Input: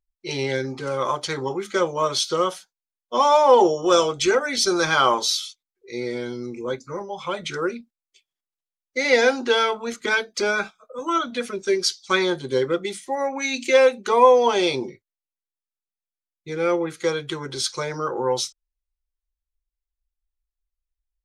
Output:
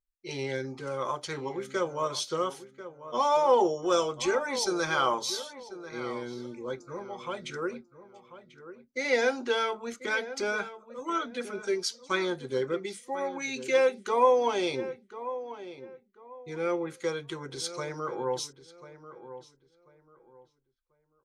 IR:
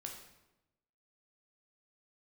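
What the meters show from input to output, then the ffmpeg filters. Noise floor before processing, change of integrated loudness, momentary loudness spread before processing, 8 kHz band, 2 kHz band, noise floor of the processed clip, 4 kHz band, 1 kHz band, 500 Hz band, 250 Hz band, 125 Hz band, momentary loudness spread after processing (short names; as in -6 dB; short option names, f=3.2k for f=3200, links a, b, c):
under -85 dBFS, -8.5 dB, 14 LU, -9.0 dB, -8.0 dB, -72 dBFS, -10.0 dB, -8.0 dB, -8.0 dB, -8.0 dB, -8.0 dB, 19 LU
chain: -filter_complex "[0:a]equalizer=f=4k:w=1.5:g=-3,asplit=2[a][b];[b]adelay=1041,lowpass=f=2k:p=1,volume=-13dB,asplit=2[c][d];[d]adelay=1041,lowpass=f=2k:p=1,volume=0.27,asplit=2[e][f];[f]adelay=1041,lowpass=f=2k:p=1,volume=0.27[g];[c][e][g]amix=inputs=3:normalize=0[h];[a][h]amix=inputs=2:normalize=0,volume=-8dB"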